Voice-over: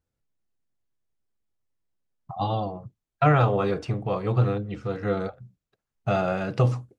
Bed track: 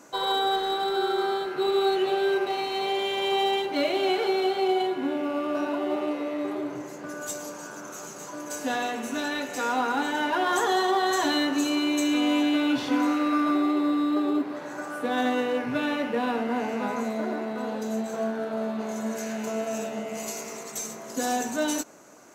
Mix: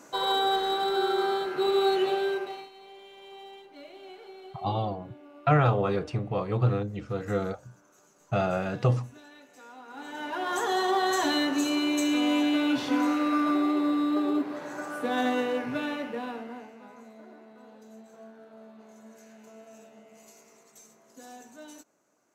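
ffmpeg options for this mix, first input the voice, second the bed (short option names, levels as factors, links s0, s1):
-filter_complex "[0:a]adelay=2250,volume=0.75[s0];[1:a]volume=10,afade=t=out:st=2.03:d=0.68:silence=0.0841395,afade=t=in:st=9.86:d=1.1:silence=0.0944061,afade=t=out:st=15.41:d=1.32:silence=0.11885[s1];[s0][s1]amix=inputs=2:normalize=0"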